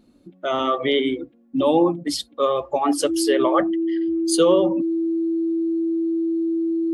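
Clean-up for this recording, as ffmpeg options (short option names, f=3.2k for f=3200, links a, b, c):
-af "bandreject=f=330:w=30"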